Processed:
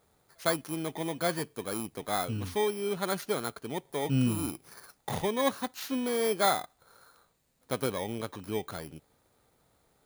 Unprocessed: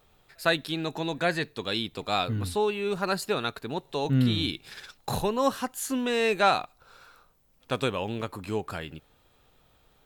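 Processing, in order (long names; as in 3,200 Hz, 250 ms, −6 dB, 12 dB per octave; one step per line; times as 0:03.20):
samples in bit-reversed order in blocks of 16 samples
high-pass filter 110 Hz 6 dB per octave
high-shelf EQ 7,000 Hz −8 dB
level −2 dB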